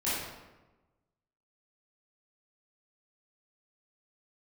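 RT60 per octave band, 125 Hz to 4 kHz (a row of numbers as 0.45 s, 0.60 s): 1.4 s, 1.3 s, 1.2 s, 1.1 s, 0.90 s, 0.75 s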